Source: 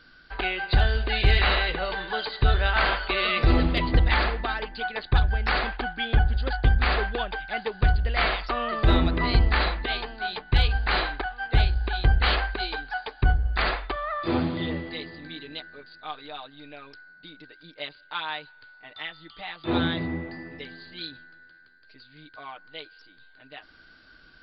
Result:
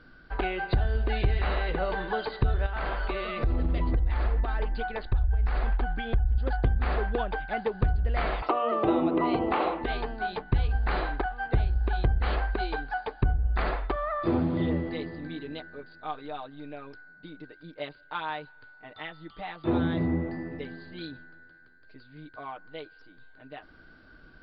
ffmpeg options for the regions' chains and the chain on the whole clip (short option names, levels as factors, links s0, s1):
-filter_complex "[0:a]asettb=1/sr,asplit=3[s0][s1][s2];[s0]atrim=end=2.664[s3];[s1]atrim=start=2.66:end=6.38,asetpts=PTS-STARTPTS,afade=t=in:d=0.004:c=qsin,afade=t=out:st=3.716:d=0.004:c=qsin,acompressor=threshold=0.0398:ratio=4:attack=3.2:release=140:knee=1:detection=peak,asubboost=boost=5:cutoff=88[s4];[s2]atrim=start=6.376[s5];[s3][s4]acrossfade=d=0.004:c1=hsin:c2=qsin[s6];[s6][s5]acrossfade=d=0.004:c1=qsin:c2=hsin,asettb=1/sr,asplit=3[s7][s8][s9];[s7]atrim=end=8.424[s10];[s8]atrim=start=8.42:end=9.84,asetpts=PTS-STARTPTS,afade=t=in:d=0.004:c=qsin,afade=t=out:st=1.416:d=0.004:c=qsin,bandreject=f=60:t=h:w=6,bandreject=f=120:t=h:w=6,bandreject=f=180:t=h:w=6,bandreject=f=240:t=h:w=6,bandreject=f=300:t=h:w=6,bandreject=f=360:t=h:w=6,bandreject=f=420:t=h:w=6,bandreject=f=480:t=h:w=6,bandreject=f=540:t=h:w=6,acontrast=81,highpass=260,equalizer=f=320:t=q:w=4:g=8,equalizer=f=500:t=q:w=4:g=5,equalizer=f=780:t=q:w=4:g=6,equalizer=f=1100:t=q:w=4:g=5,equalizer=f=1700:t=q:w=4:g=-8,equalizer=f=2800:t=q:w=4:g=5,lowpass=f=3700:w=0.5412,lowpass=f=3700:w=1.3066[s11];[s9]atrim=start=9.836[s12];[s10][s11]acrossfade=d=0.004:c1=hsin:c2=qsin[s13];[s13][s12]acrossfade=d=0.004:c1=qsin:c2=hsin,highshelf=f=3200:g=-8.5,acompressor=threshold=0.0447:ratio=5,tiltshelf=f=1400:g=5.5"